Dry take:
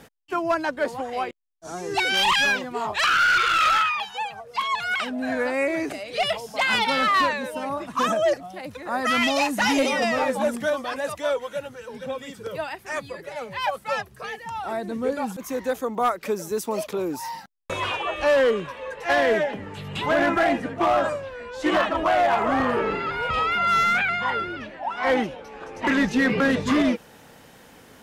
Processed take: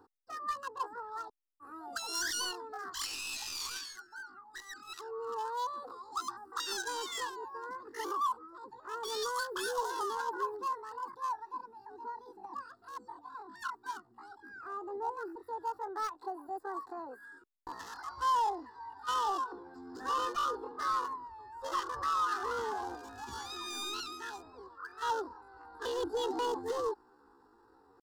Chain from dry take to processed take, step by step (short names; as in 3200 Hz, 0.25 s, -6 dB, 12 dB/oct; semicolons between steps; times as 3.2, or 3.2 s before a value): Wiener smoothing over 25 samples; pitch shift +10 st; fixed phaser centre 610 Hz, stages 6; gain -9 dB